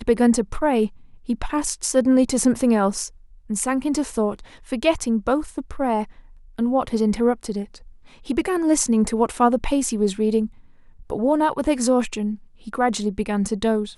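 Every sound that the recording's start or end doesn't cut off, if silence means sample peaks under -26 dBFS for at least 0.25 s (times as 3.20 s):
1.29–3.06 s
3.50–4.39 s
4.72–6.04 s
6.58–7.75 s
8.30–10.46 s
11.10–12.34 s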